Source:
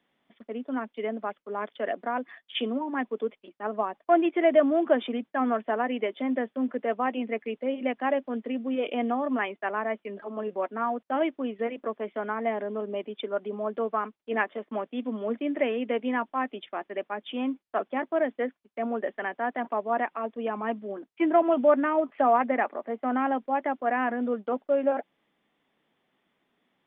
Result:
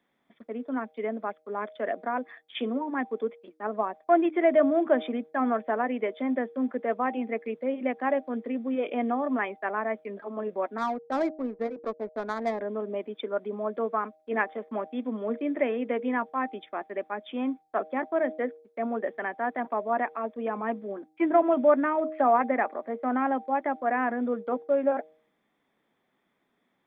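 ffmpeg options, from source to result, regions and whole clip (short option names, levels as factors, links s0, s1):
-filter_complex "[0:a]asettb=1/sr,asplit=3[s0][s1][s2];[s0]atrim=end=10.784[s3];[s1]atrim=start=10.78:end=12.61,asetpts=PTS-STARTPTS,afade=t=in:d=0.004:c=qsin,afade=t=out:st=1.826:d=0.004:c=qsin,aeval=exprs='sgn(val(0))*max(abs(val(0))-0.00251,0)':c=same,adynamicsmooth=sensitivity=2.5:basefreq=680[s4];[s2]atrim=start=12.606[s5];[s3][s4]acrossfade=d=0.004:c1=hsin:c2=qsin[s6];[s6][s5]acrossfade=d=0.004:c1=qsin:c2=hsin,equalizer=f=2900:w=6.3:g=-12,bandreject=f=156.6:t=h:w=4,bandreject=f=313.2:t=h:w=4,bandreject=f=469.8:t=h:w=4,bandreject=f=626.4:t=h:w=4,bandreject=f=783:t=h:w=4"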